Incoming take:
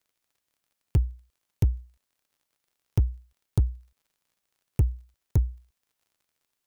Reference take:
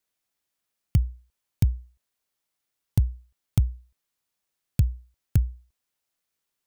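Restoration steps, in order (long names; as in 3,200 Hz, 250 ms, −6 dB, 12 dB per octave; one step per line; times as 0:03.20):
clipped peaks rebuilt −15 dBFS
click removal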